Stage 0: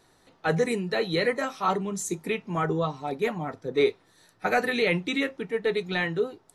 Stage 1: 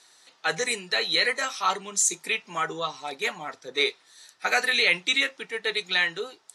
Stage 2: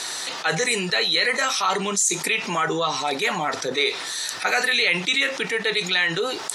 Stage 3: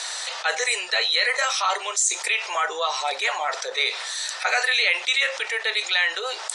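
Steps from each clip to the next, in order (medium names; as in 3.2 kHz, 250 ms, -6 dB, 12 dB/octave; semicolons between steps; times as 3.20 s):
frequency weighting ITU-R 468
level flattener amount 70%
elliptic band-pass 550–8900 Hz, stop band 40 dB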